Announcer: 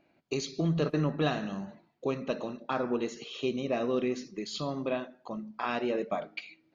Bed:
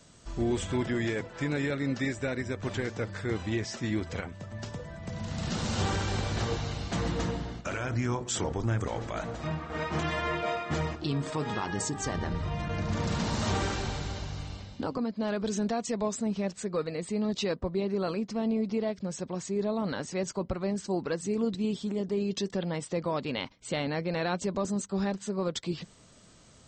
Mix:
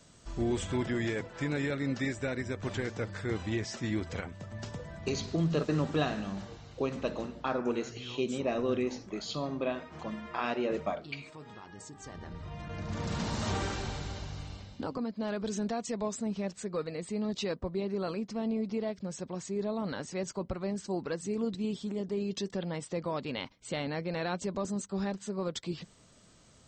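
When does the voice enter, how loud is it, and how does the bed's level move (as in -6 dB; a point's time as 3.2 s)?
4.75 s, -1.0 dB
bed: 5.17 s -2 dB
5.48 s -16.5 dB
11.77 s -16.5 dB
13.18 s -3.5 dB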